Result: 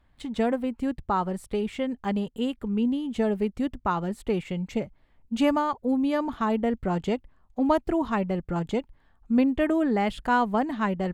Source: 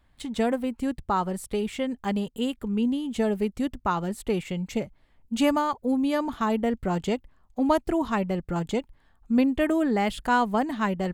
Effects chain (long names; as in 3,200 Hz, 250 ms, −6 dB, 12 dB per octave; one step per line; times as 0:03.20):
high-shelf EQ 5,000 Hz −10.5 dB